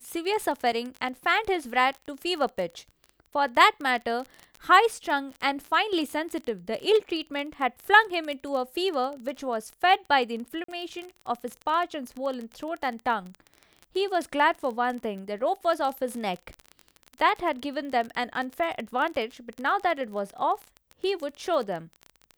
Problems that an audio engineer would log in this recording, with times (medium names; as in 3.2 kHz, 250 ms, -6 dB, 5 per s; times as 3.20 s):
crackle 25 per s -31 dBFS
10.64–10.68 s: dropout 44 ms